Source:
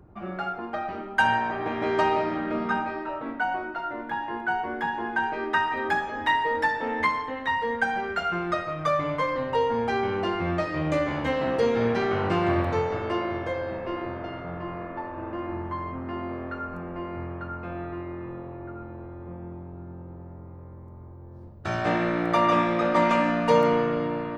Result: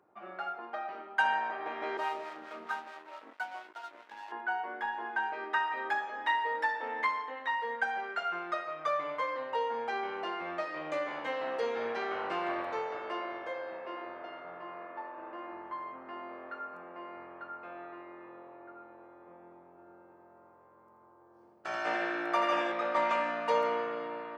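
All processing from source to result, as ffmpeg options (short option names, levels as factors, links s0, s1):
-filter_complex "[0:a]asettb=1/sr,asplit=3[s0][s1][s2];[s0]atrim=end=1.974[s3];[s1]atrim=start=1.97:end=4.32,asetpts=PTS-STARTPTS,afade=t=in:d=0.004:c=qsin,afade=t=out:st=2.346:d=0.004:c=qsin,acrossover=split=530[s4][s5];[s4]aeval=exprs='val(0)*(1-0.7/2+0.7/2*cos(2*PI*4.6*n/s))':c=same[s6];[s5]aeval=exprs='val(0)*(1-0.7/2-0.7/2*cos(2*PI*4.6*n/s))':c=same[s7];[s6][s7]amix=inputs=2:normalize=0,aeval=exprs='sgn(val(0))*max(abs(val(0))-0.01,0)':c=same[s8];[s2]atrim=start=4.316[s9];[s3][s8]acrossfade=d=0.004:c1=hsin:c2=qsin[s10];[s10][s9]acrossfade=d=0.004:c1=qsin:c2=hsin,asettb=1/sr,asplit=3[s11][s12][s13];[s11]atrim=end=19.704[s14];[s12]atrim=start=19.7:end=22.72,asetpts=PTS-STARTPTS,afade=t=in:d=0.004:c=qsin,afade=t=out:st=3.016:d=0.004:c=qsin,highshelf=f=4500:g=4.5,bandreject=f=3800:w=7.9,aecho=1:1:83|166|249|332|415|498|581:0.562|0.292|0.152|0.0791|0.0411|0.0214|0.0111,atrim=end_sample=133182[s15];[s13]atrim=start=22.716[s16];[s14][s15]acrossfade=d=0.004:c1=hsin:c2=qsin[s17];[s17][s16]acrossfade=d=0.004:c1=qsin:c2=hsin,highpass=550,highshelf=f=5300:g=-7.5,volume=0.531"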